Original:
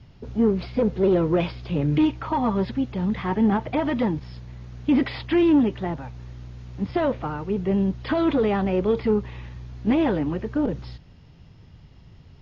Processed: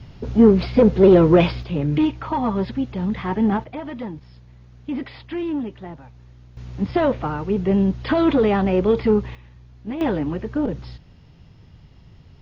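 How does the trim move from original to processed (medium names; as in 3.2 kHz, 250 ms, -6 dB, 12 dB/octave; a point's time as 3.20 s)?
+8 dB
from 1.63 s +1 dB
from 3.64 s -7.5 dB
from 6.57 s +4 dB
from 9.35 s -8.5 dB
from 10.01 s +1 dB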